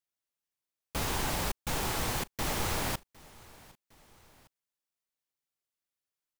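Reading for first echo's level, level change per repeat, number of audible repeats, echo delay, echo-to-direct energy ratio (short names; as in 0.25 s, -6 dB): -23.0 dB, -5.0 dB, 2, 0.758 s, -22.0 dB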